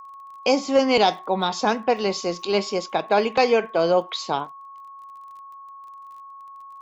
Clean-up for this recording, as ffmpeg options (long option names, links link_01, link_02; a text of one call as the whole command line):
ffmpeg -i in.wav -af "adeclick=threshold=4,bandreject=frequency=1100:width=30" out.wav